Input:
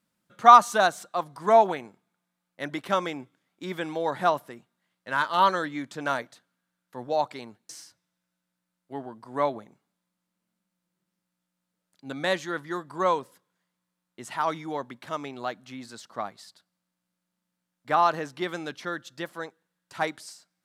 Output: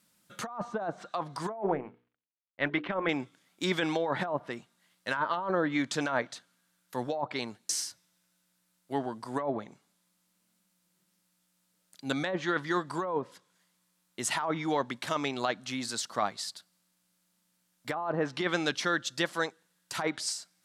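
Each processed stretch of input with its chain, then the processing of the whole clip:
0:01.54–0:03.09: mu-law and A-law mismatch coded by A + low-pass filter 2,800 Hz 24 dB per octave + mains-hum notches 60/120/180/240/300/360/420/480 Hz
whole clip: treble cut that deepens with the level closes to 830 Hz, closed at −20.5 dBFS; high-shelf EQ 2,900 Hz +10.5 dB; compressor whose output falls as the input rises −30 dBFS, ratio −1

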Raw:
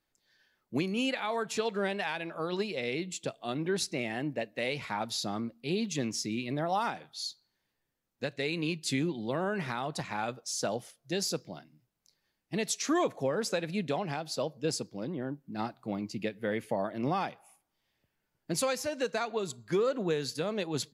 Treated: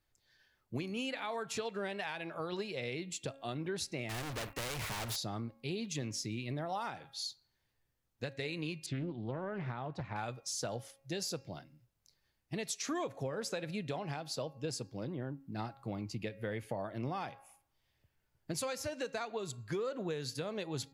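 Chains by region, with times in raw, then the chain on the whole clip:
0:04.09–0:05.16: parametric band 4,900 Hz −10.5 dB 2.7 octaves + leveller curve on the samples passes 5 + every bin compressed towards the loudest bin 2 to 1
0:08.86–0:10.16: one scale factor per block 7 bits + head-to-tape spacing loss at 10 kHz 32 dB + highs frequency-modulated by the lows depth 0.29 ms
whole clip: low shelf with overshoot 140 Hz +8 dB, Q 1.5; hum removal 273.2 Hz, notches 10; downward compressor 2.5 to 1, threshold −36 dBFS; level −1 dB

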